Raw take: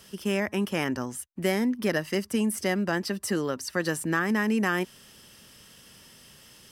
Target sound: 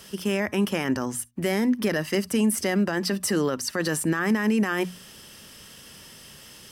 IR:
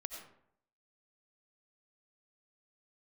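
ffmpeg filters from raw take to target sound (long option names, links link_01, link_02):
-filter_complex "[0:a]bandreject=frequency=60:width_type=h:width=6,bandreject=frequency=120:width_type=h:width=6,bandreject=frequency=180:width_type=h:width=6,bandreject=frequency=240:width_type=h:width=6,alimiter=limit=-21dB:level=0:latency=1:release=23,asplit=2[link_01][link_02];[1:a]atrim=start_sample=2205,atrim=end_sample=6174,asetrate=79380,aresample=44100[link_03];[link_02][link_03]afir=irnorm=-1:irlink=0,volume=-11dB[link_04];[link_01][link_04]amix=inputs=2:normalize=0,volume=5dB"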